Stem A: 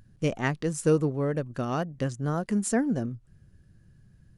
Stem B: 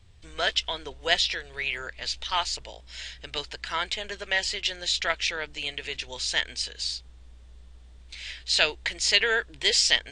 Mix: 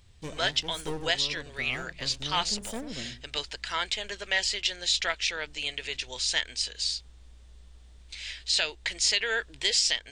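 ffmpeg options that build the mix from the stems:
-filter_complex "[0:a]bass=f=250:g=-5,treble=f=4k:g=4,aeval=exprs='clip(val(0),-1,0.0141)':c=same,volume=-8.5dB,asplit=2[a][b];[b]volume=-11dB[c];[1:a]highshelf=f=3.8k:g=6,volume=-2.5dB[d];[c]aecho=0:1:90:1[e];[a][d][e]amix=inputs=3:normalize=0,alimiter=limit=-12.5dB:level=0:latency=1:release=329"

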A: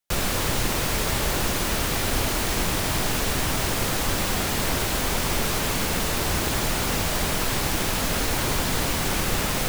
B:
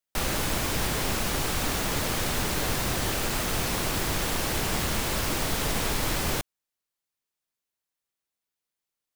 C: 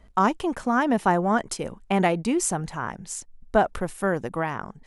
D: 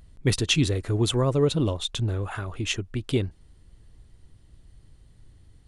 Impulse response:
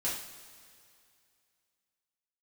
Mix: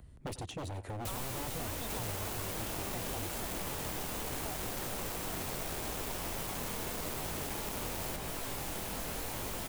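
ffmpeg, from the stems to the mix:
-filter_complex "[0:a]flanger=delay=18:depth=7.9:speed=0.81,adelay=950,volume=-3.5dB[a];[1:a]highpass=f=220:p=1,flanger=delay=7.7:depth=8:regen=-39:speed=0.63:shape=triangular,acrusher=bits=4:mix=0:aa=0.000001,adelay=1750,volume=3dB[b];[2:a]adelay=900,volume=-15.5dB[c];[3:a]highpass=47,acrossover=split=390[d][e];[e]acompressor=threshold=-39dB:ratio=5[f];[d][f]amix=inputs=2:normalize=0,aeval=exprs='0.0531*(abs(mod(val(0)/0.0531+3,4)-2)-1)':c=same,volume=0dB,asplit=2[g][h];[h]volume=-17.5dB,aecho=0:1:91:1[i];[a][b][c][g][i]amix=inputs=5:normalize=0,equalizer=f=4.6k:w=0.72:g=-7,acrossover=split=440|1100|2200|7800[j][k][l][m][n];[j]acompressor=threshold=-42dB:ratio=4[o];[k]acompressor=threshold=-45dB:ratio=4[p];[l]acompressor=threshold=-59dB:ratio=4[q];[m]acompressor=threshold=-46dB:ratio=4[r];[n]acompressor=threshold=-42dB:ratio=4[s];[o][p][q][r][s]amix=inputs=5:normalize=0"

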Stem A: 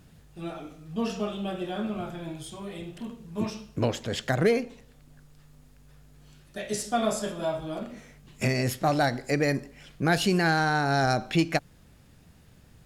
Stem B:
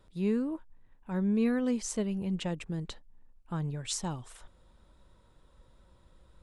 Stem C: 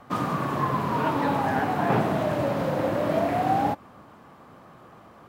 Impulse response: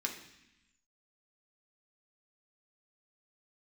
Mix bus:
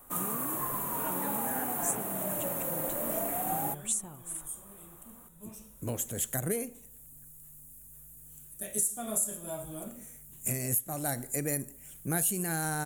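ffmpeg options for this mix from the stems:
-filter_complex "[0:a]lowshelf=f=360:g=6,adelay=2050,volume=-11dB,afade=t=in:st=5.52:d=0.54:silence=0.298538[a];[1:a]bass=f=250:g=-3,treble=f=4k:g=-10,acompressor=threshold=-40dB:ratio=6,volume=-1dB[b];[2:a]lowshelf=f=120:g=-11.5,volume=-11dB[c];[a][b][c]amix=inputs=3:normalize=0,aexciter=amount=14.8:drive=9.9:freq=7.7k,alimiter=limit=-17.5dB:level=0:latency=1:release=408"

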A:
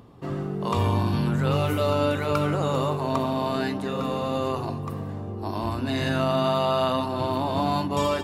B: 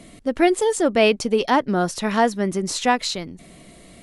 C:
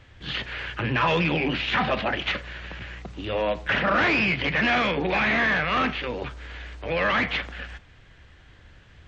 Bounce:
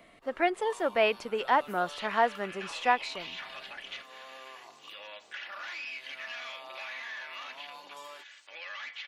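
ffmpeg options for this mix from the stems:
-filter_complex "[0:a]highshelf=f=11k:g=4.5,volume=-14dB[a];[1:a]acrossover=split=550 3000:gain=0.158 1 0.126[b][c][d];[b][c][d]amix=inputs=3:normalize=0,volume=-4dB[e];[2:a]aecho=1:1:3.5:0.44,crystalizer=i=7.5:c=0,adelay=1650,volume=-17.5dB[f];[a][f]amix=inputs=2:normalize=0,highpass=830,acompressor=threshold=-45dB:ratio=2,volume=0dB[g];[e][g]amix=inputs=2:normalize=0"

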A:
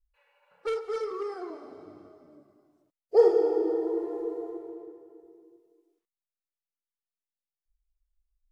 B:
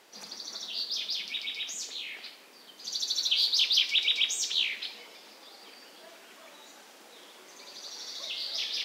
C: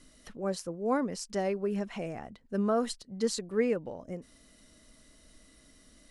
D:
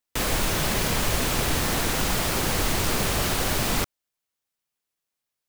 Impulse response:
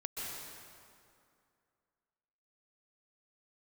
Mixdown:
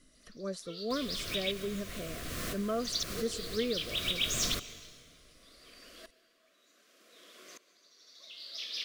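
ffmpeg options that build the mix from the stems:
-filter_complex "[0:a]highpass=540,volume=-19.5dB[a];[1:a]aeval=exprs='val(0)*pow(10,-28*if(lt(mod(-0.66*n/s,1),2*abs(-0.66)/1000),1-mod(-0.66*n/s,1)/(2*abs(-0.66)/1000),(mod(-0.66*n/s,1)-2*abs(-0.66)/1000)/(1-2*abs(-0.66)/1000))/20)':c=same,volume=0dB,asplit=2[b][c];[c]volume=-13.5dB[d];[2:a]volume=-5.5dB,asplit=2[e][f];[3:a]adelay=750,volume=-12.5dB,asplit=2[g][h];[h]volume=-17dB[i];[f]apad=whole_len=275168[j];[g][j]sidechaincompress=threshold=-46dB:ratio=8:attack=5.4:release=305[k];[4:a]atrim=start_sample=2205[l];[d][i]amix=inputs=2:normalize=0[m];[m][l]afir=irnorm=-1:irlink=0[n];[a][b][e][k][n]amix=inputs=5:normalize=0,asuperstop=centerf=860:order=8:qfactor=3"

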